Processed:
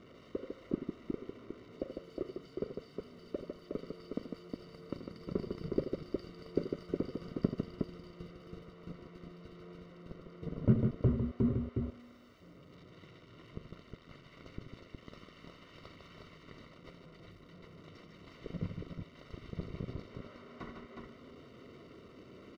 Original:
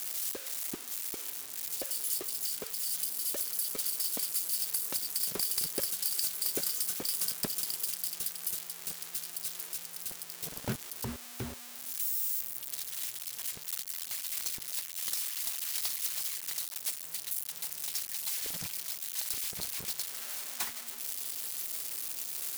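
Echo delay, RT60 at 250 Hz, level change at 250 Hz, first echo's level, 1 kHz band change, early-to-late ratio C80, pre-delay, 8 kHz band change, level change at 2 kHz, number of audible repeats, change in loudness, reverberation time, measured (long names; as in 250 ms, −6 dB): 40 ms, no reverb audible, +11.0 dB, −15.0 dB, −4.5 dB, no reverb audible, no reverb audible, below −40 dB, −11.0 dB, 4, −7.0 dB, no reverb audible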